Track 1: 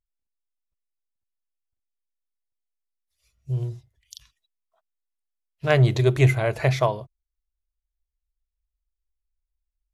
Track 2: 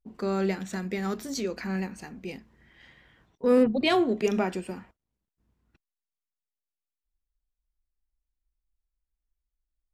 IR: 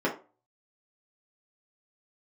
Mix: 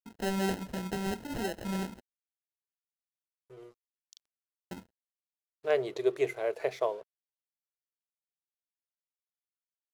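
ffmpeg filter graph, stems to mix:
-filter_complex "[0:a]highpass=f=440:t=q:w=3.9,volume=-13dB[a];[1:a]acrusher=samples=38:mix=1:aa=0.000001,volume=-3dB,asplit=3[b][c][d];[b]atrim=end=2.01,asetpts=PTS-STARTPTS,afade=t=out:st=2.006:d=0.004:c=hsin[e];[c]atrim=start=2.01:end=4.71,asetpts=PTS-STARTPTS,volume=0[f];[d]atrim=start=4.71,asetpts=PTS-STARTPTS,afade=t=in:d=0.004:c=hsin[g];[e][f][g]concat=n=3:v=0:a=1[h];[a][h]amix=inputs=2:normalize=0,aeval=exprs='sgn(val(0))*max(abs(val(0))-0.00141,0)':c=same"

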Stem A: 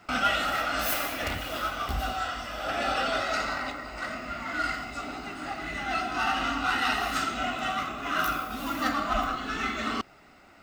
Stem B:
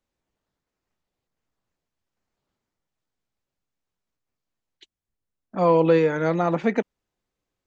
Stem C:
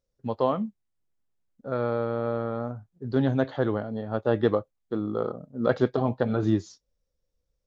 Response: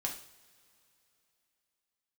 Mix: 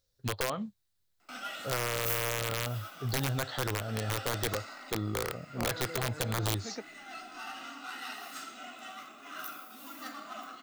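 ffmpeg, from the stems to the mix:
-filter_complex "[0:a]highpass=f=200:w=0.5412,highpass=f=200:w=1.3066,adelay=1200,volume=-16.5dB[a];[1:a]acompressor=threshold=-18dB:ratio=6,volume=-16.5dB[b];[2:a]equalizer=f=100:t=o:w=0.67:g=9,equalizer=f=250:t=o:w=0.67:g=-6,equalizer=f=1.6k:t=o:w=0.67:g=6,equalizer=f=4k:t=o:w=0.67:g=11,volume=-1.5dB[c];[b][c]amix=inputs=2:normalize=0,acompressor=threshold=-28dB:ratio=8,volume=0dB[d];[a][d]amix=inputs=2:normalize=0,aeval=exprs='(mod(15*val(0)+1,2)-1)/15':c=same,crystalizer=i=2:c=0,asoftclip=type=hard:threshold=-19dB"

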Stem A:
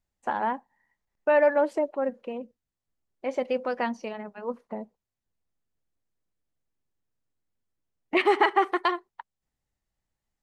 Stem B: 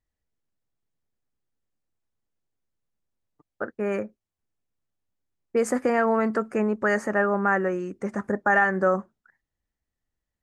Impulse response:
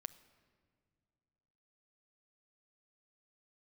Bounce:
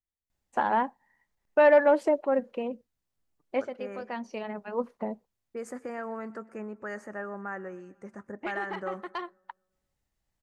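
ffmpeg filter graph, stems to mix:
-filter_complex "[0:a]acontrast=88,adelay=300,volume=-5dB[a];[1:a]volume=-14.5dB,asplit=3[b][c][d];[c]volume=-22dB[e];[d]apad=whole_len=473023[f];[a][f]sidechaincompress=threshold=-51dB:ratio=5:attack=6.4:release=522[g];[e]aecho=0:1:124|248|372|496|620|744|868|992:1|0.56|0.314|0.176|0.0983|0.0551|0.0308|0.0173[h];[g][b][h]amix=inputs=3:normalize=0"

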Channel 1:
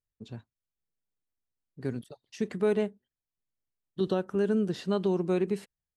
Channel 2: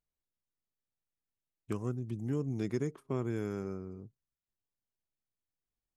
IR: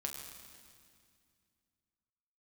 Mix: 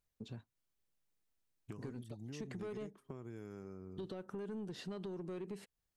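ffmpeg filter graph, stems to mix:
-filter_complex "[0:a]alimiter=limit=-24dB:level=0:latency=1:release=95,asoftclip=type=tanh:threshold=-27.5dB,volume=1.5dB[a];[1:a]acompressor=threshold=-41dB:ratio=3,volume=1dB[b];[a][b]amix=inputs=2:normalize=0,acompressor=threshold=-47dB:ratio=2.5"

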